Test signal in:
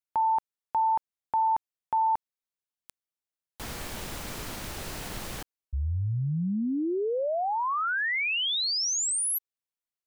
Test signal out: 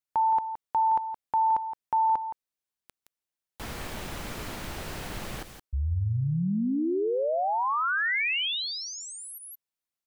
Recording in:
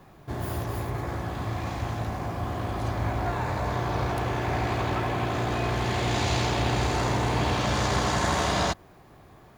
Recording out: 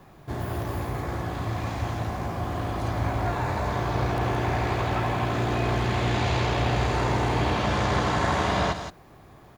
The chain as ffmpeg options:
ffmpeg -i in.wav -filter_complex "[0:a]aecho=1:1:169:0.299,acrossover=split=3600[link_01][link_02];[link_02]acompressor=threshold=-44dB:ratio=4:attack=1:release=60[link_03];[link_01][link_03]amix=inputs=2:normalize=0,volume=1dB" out.wav

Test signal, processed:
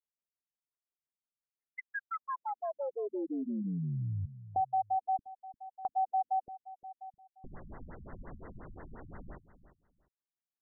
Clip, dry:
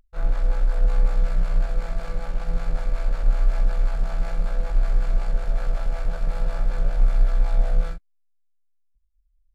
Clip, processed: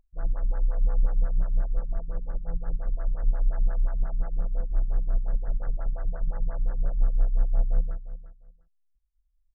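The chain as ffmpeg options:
ffmpeg -i in.wav -af "aecho=1:1:350|700:0.2|0.0419,afftfilt=real='re*lt(b*sr/1024,210*pow(2100/210,0.5+0.5*sin(2*PI*5.7*pts/sr)))':imag='im*lt(b*sr/1024,210*pow(2100/210,0.5+0.5*sin(2*PI*5.7*pts/sr)))':win_size=1024:overlap=0.75,volume=-5dB" out.wav

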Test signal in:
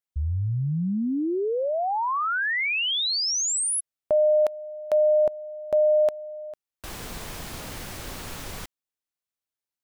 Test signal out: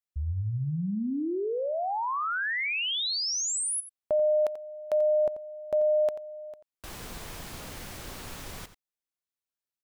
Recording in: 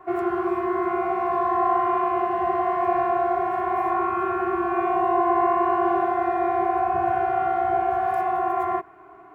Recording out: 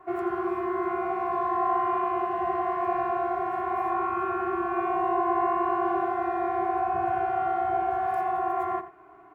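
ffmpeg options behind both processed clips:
ffmpeg -i in.wav -filter_complex "[0:a]asplit=2[link_01][link_02];[link_02]adelay=87.46,volume=-13dB,highshelf=frequency=4000:gain=-1.97[link_03];[link_01][link_03]amix=inputs=2:normalize=0,volume=-4.5dB" out.wav

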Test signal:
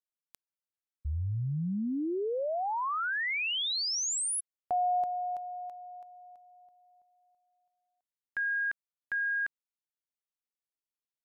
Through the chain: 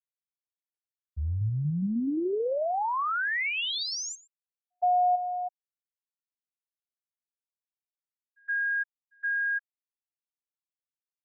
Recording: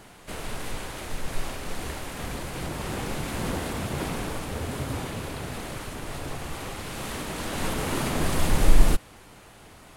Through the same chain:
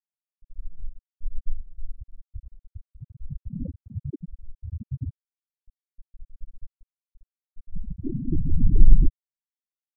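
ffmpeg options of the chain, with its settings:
ffmpeg -i in.wav -filter_complex "[0:a]aeval=exprs='0.708*(cos(1*acos(clip(val(0)/0.708,-1,1)))-cos(1*PI/2))+0.0141*(cos(2*acos(clip(val(0)/0.708,-1,1)))-cos(2*PI/2))+0.02*(cos(5*acos(clip(val(0)/0.708,-1,1)))-cos(5*PI/2))':channel_layout=same,afftfilt=real='re*gte(hypot(re,im),0.282)':imag='im*gte(hypot(re,im),0.282)':win_size=1024:overlap=0.75,acrossover=split=4100[link_01][link_02];[link_01]adelay=120[link_03];[link_03][link_02]amix=inputs=2:normalize=0,volume=4dB" out.wav

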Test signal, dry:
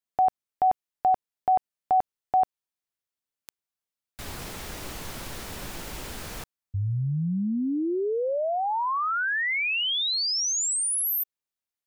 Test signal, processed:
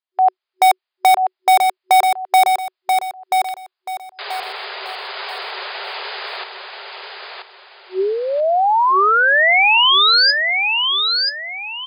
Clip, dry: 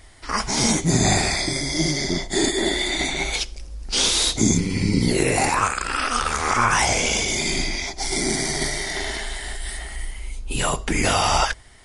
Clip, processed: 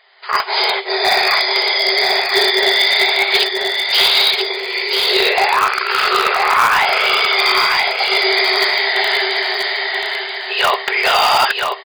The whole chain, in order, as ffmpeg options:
ffmpeg -i in.wav -filter_complex "[0:a]afftfilt=real='re*between(b*sr/4096,370,5000)':imag='im*between(b*sr/4096,370,5000)':win_size=4096:overlap=0.75,equalizer=frequency=490:width_type=o:width=0.52:gain=-8.5,dynaudnorm=framelen=120:gausssize=5:maxgain=11.5dB,asplit=2[link_01][link_02];[link_02]aeval=exprs='(mod(2.24*val(0)+1,2)-1)/2.24':channel_layout=same,volume=-10dB[link_03];[link_01][link_03]amix=inputs=2:normalize=0,aecho=1:1:983|1966|2949|3932:0.596|0.185|0.0572|0.0177,volume=-1dB" out.wav

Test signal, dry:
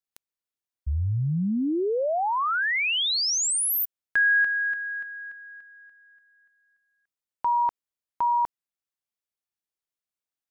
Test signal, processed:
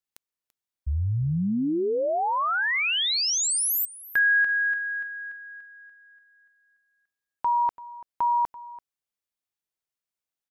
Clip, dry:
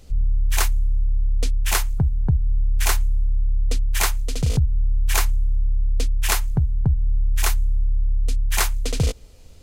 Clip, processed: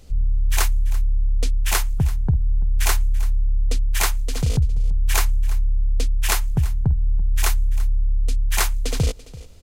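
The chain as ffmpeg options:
ffmpeg -i in.wav -af "aecho=1:1:337:0.119" out.wav

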